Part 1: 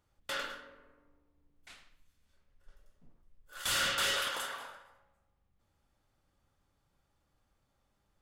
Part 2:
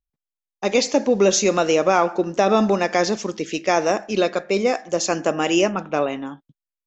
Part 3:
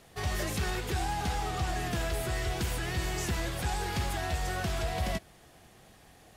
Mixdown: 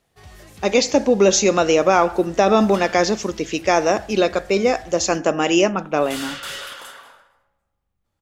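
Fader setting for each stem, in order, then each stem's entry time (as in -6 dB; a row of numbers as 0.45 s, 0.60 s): 0.0 dB, +2.0 dB, -11.5 dB; 2.45 s, 0.00 s, 0.00 s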